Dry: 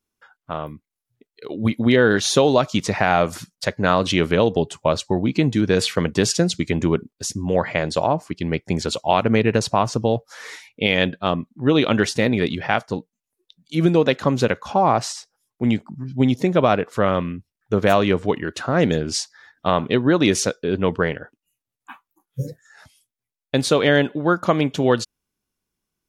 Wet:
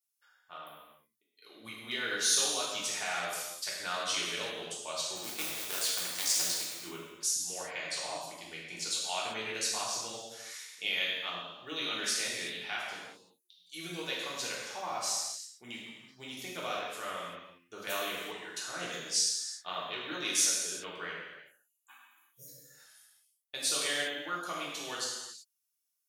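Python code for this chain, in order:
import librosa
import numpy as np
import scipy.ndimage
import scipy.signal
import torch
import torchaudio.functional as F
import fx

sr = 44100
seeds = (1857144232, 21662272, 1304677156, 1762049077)

y = fx.cycle_switch(x, sr, every=2, mode='muted', at=(5.15, 6.83), fade=0.02)
y = np.diff(y, prepend=0.0)
y = fx.rev_gated(y, sr, seeds[0], gate_ms=410, shape='falling', drr_db=-6.0)
y = F.gain(torch.from_numpy(y), -7.0).numpy()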